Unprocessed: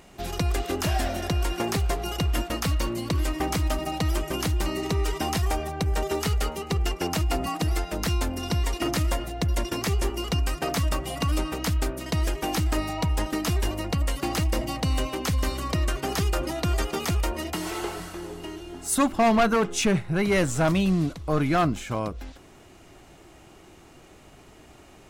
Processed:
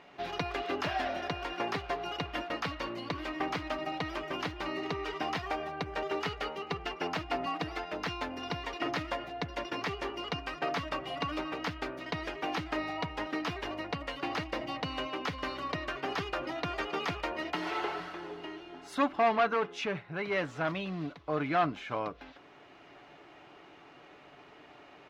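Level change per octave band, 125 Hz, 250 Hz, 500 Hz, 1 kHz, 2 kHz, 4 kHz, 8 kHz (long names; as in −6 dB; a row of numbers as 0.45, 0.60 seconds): −17.0, −10.5, −6.0, −3.5, −3.0, −7.0, −21.5 decibels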